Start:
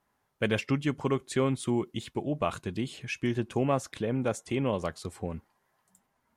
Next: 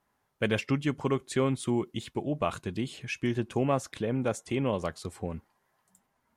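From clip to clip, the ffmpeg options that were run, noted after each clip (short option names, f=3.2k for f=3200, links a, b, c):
-af anull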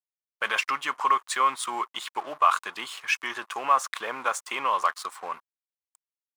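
-af "alimiter=limit=-22dB:level=0:latency=1:release=13,aeval=exprs='sgn(val(0))*max(abs(val(0))-0.00237,0)':c=same,highpass=f=1.1k:t=q:w=4.2,volume=9dB"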